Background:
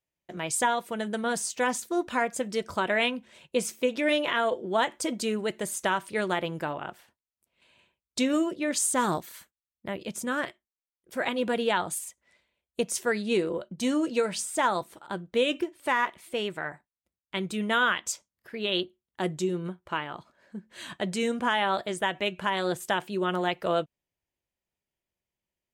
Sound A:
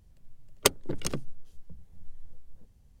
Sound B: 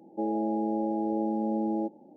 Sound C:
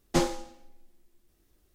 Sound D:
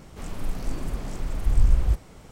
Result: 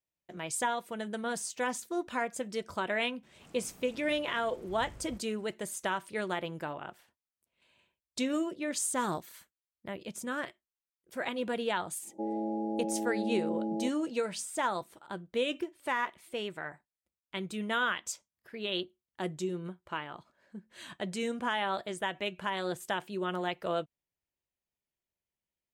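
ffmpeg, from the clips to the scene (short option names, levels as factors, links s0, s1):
-filter_complex "[0:a]volume=0.501[s0];[4:a]highpass=110,atrim=end=2.31,asetpts=PTS-STARTPTS,volume=0.133,afade=t=in:d=0.004:c=hsin,afade=t=out:st=2.306:d=0.004:c=hsin,adelay=3230[s1];[2:a]atrim=end=2.16,asetpts=PTS-STARTPTS,volume=0.562,afade=t=in:d=0.1,afade=t=out:st=2.06:d=0.1,adelay=12010[s2];[s0][s1][s2]amix=inputs=3:normalize=0"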